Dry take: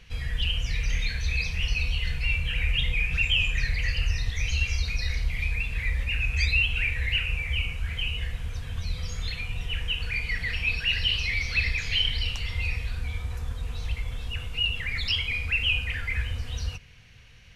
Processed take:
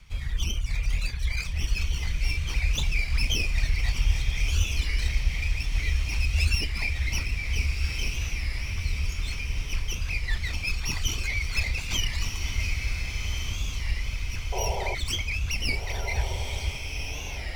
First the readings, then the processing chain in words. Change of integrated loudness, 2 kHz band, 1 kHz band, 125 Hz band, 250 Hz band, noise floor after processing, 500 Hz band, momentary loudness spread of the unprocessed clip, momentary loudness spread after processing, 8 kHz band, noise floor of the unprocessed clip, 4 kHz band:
-1.5 dB, -4.0 dB, +7.5 dB, +1.0 dB, +3.0 dB, -34 dBFS, +6.5 dB, 10 LU, 5 LU, no reading, -40 dBFS, -4.5 dB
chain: comb filter that takes the minimum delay 0.89 ms; reverb removal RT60 0.54 s; bass shelf 61 Hz +5.5 dB; painted sound noise, 14.52–14.95 s, 360–1000 Hz -31 dBFS; echo that smears into a reverb 1474 ms, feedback 50%, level -5 dB; warped record 33 1/3 rpm, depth 160 cents; trim -1.5 dB

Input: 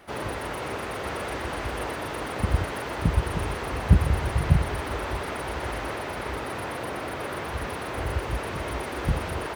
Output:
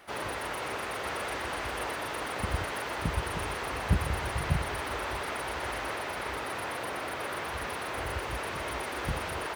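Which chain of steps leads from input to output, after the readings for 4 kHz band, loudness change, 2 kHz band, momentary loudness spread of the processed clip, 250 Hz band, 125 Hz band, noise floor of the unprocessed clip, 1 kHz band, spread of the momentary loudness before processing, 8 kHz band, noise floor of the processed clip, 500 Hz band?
0.0 dB, -4.5 dB, -0.5 dB, 4 LU, -7.5 dB, -9.0 dB, -34 dBFS, -2.0 dB, 8 LU, 0.0 dB, -36 dBFS, -4.5 dB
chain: bass shelf 470 Hz -9.5 dB

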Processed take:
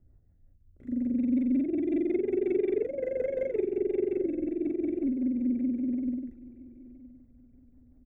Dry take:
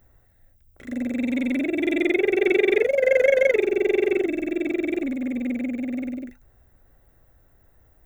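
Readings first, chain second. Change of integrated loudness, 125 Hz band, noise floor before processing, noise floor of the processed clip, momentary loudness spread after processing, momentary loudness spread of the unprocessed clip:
-7.0 dB, no reading, -59 dBFS, -60 dBFS, 7 LU, 11 LU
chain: FFT filter 270 Hz 0 dB, 510 Hz -10 dB, 3.6 kHz -27 dB; rotary cabinet horn 5.5 Hz; feedback delay 968 ms, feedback 28%, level -20 dB

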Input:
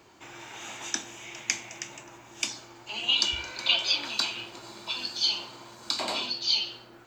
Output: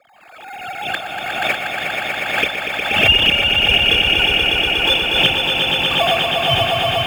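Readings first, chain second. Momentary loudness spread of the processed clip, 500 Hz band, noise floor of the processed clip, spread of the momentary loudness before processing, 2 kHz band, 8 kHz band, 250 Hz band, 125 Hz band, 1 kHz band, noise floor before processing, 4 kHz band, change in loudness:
12 LU, +22.0 dB, -40 dBFS, 19 LU, +19.5 dB, -1.5 dB, +16.5 dB, +25.0 dB, +19.0 dB, -52 dBFS, +13.0 dB, +13.5 dB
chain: formants replaced by sine waves; level rider gain up to 15.5 dB; in parallel at -7.5 dB: sample-and-hold 15×; on the sum: frequency shift -32 Hz; comb of notches 1 kHz; on a send: echo with a slow build-up 120 ms, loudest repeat 5, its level -5 dB; on the sum: swell ahead of each attack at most 48 dB/s; trim -1.5 dB

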